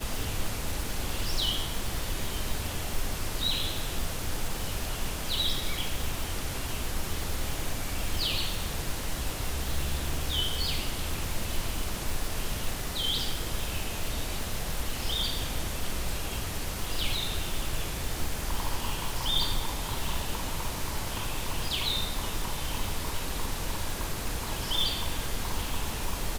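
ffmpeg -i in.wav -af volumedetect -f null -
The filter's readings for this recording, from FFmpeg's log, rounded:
mean_volume: -29.4 dB
max_volume: -13.5 dB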